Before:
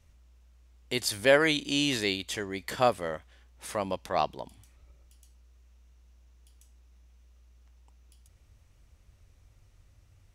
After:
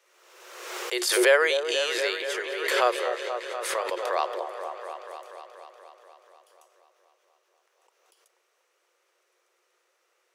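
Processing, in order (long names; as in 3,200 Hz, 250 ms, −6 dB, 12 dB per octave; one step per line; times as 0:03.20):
Chebyshev high-pass with heavy ripple 350 Hz, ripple 6 dB
echo whose low-pass opens from repeat to repeat 241 ms, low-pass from 750 Hz, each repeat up 1 octave, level −6 dB
background raised ahead of every attack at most 44 dB per second
level +4.5 dB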